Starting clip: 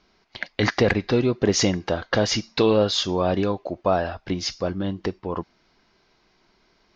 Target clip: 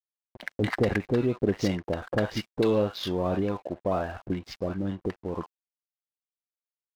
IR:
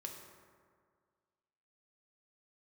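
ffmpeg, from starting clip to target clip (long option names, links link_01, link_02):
-filter_complex "[0:a]acrossover=split=810[link_01][link_02];[link_02]adelay=50[link_03];[link_01][link_03]amix=inputs=2:normalize=0,asplit=2[link_04][link_05];[link_05]acompressor=threshold=-32dB:ratio=10,volume=-1dB[link_06];[link_04][link_06]amix=inputs=2:normalize=0,aemphasis=mode=reproduction:type=75fm,adynamicsmooth=sensitivity=3.5:basefreq=2500,aeval=exprs='sgn(val(0))*max(abs(val(0))-0.00531,0)':channel_layout=same,volume=-6dB"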